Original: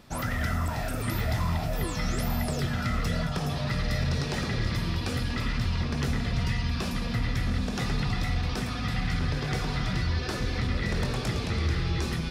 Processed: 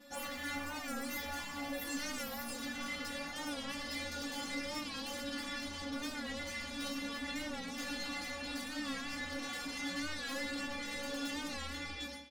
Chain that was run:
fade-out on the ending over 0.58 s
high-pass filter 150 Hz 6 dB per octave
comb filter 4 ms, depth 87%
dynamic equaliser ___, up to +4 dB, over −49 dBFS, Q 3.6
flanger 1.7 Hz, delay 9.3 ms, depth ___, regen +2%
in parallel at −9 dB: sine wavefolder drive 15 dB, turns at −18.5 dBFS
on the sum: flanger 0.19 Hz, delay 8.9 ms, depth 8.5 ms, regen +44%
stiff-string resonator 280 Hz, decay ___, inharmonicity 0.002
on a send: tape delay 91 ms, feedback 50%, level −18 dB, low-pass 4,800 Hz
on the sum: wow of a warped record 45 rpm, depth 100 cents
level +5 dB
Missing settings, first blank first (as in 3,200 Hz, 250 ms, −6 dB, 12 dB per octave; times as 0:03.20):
660 Hz, 9 ms, 0.3 s